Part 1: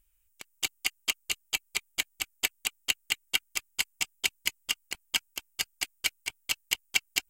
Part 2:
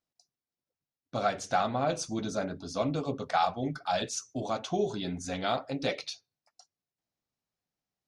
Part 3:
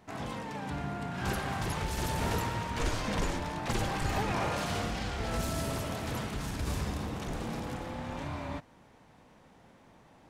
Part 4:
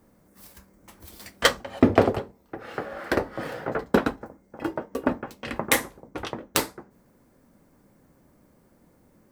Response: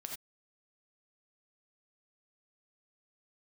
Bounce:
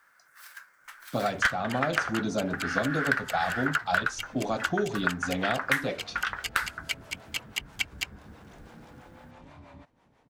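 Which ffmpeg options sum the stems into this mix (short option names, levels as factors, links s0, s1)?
-filter_complex "[0:a]tiltshelf=f=970:g=-6.5,adelay=850,volume=0.794[s0];[1:a]lowshelf=f=330:g=8.5,volume=1.33,asplit=2[s1][s2];[2:a]acompressor=threshold=0.00562:ratio=2,acrossover=split=420[s3][s4];[s3]aeval=exprs='val(0)*(1-0.7/2+0.7/2*cos(2*PI*6.1*n/s))':c=same[s5];[s4]aeval=exprs='val(0)*(1-0.7/2-0.7/2*cos(2*PI*6.1*n/s))':c=same[s6];[s5][s6]amix=inputs=2:normalize=0,adelay=1250,volume=0.708[s7];[3:a]highpass=f=1500:t=q:w=5.5,aeval=exprs='0.668*(abs(mod(val(0)/0.668+3,4)-2)-1)':c=same,volume=1.26[s8];[s2]apad=whole_len=359258[s9];[s0][s9]sidechaincompress=threshold=0.0316:ratio=8:attack=16:release=682[s10];[s10][s1][s7][s8]amix=inputs=4:normalize=0,highshelf=f=8000:g=-7,acrossover=split=180|2500[s11][s12][s13];[s11]acompressor=threshold=0.00891:ratio=4[s14];[s12]acompressor=threshold=0.0562:ratio=4[s15];[s13]acompressor=threshold=0.0141:ratio=4[s16];[s14][s15][s16]amix=inputs=3:normalize=0"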